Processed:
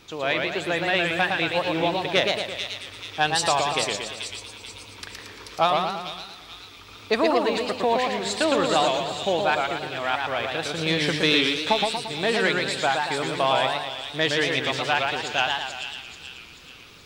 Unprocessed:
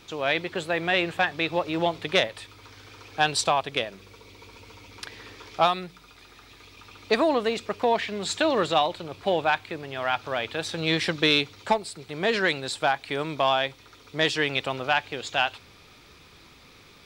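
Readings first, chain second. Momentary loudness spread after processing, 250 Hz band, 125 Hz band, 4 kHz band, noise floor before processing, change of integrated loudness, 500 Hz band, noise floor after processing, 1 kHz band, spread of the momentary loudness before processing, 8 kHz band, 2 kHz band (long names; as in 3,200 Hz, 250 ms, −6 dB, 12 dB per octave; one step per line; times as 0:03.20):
17 LU, +2.0 dB, +2.0 dB, +3.5 dB, −53 dBFS, +2.0 dB, +2.0 dB, −45 dBFS, +2.0 dB, 12 LU, +4.0 dB, +2.5 dB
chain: delay with a high-pass on its return 435 ms, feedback 45%, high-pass 3,200 Hz, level −3.5 dB
feedback echo with a swinging delay time 115 ms, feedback 53%, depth 163 cents, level −3.5 dB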